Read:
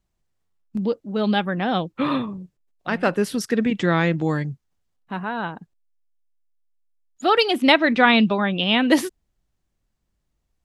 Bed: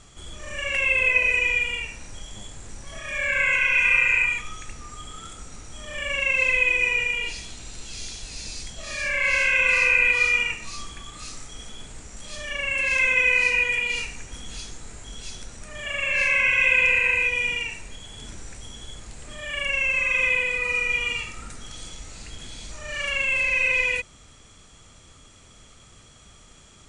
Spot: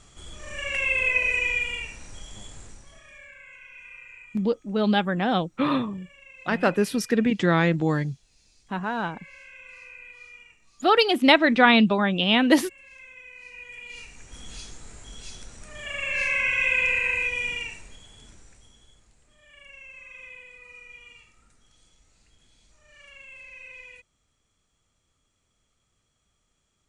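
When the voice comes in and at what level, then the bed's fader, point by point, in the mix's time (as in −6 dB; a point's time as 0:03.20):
3.60 s, −1.0 dB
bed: 0:02.61 −3 dB
0:03.40 −26.5 dB
0:13.35 −26.5 dB
0:14.43 −4 dB
0:17.64 −4 dB
0:19.31 −22.5 dB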